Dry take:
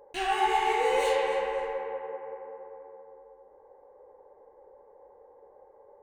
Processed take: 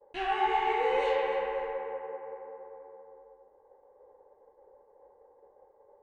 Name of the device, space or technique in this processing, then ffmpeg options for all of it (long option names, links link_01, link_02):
hearing-loss simulation: -af "lowpass=3000,agate=range=-33dB:threshold=-51dB:ratio=3:detection=peak,volume=-2dB"